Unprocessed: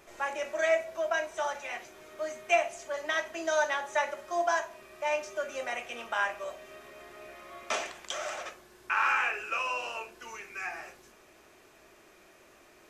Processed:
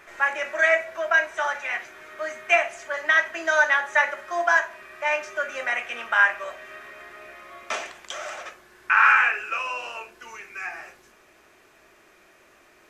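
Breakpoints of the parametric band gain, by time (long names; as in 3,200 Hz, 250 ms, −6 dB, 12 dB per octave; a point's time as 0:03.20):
parametric band 1,700 Hz 1.4 octaves
0:06.78 +14 dB
0:07.82 +4 dB
0:08.43 +4 dB
0:09.06 +14.5 dB
0:09.62 +5 dB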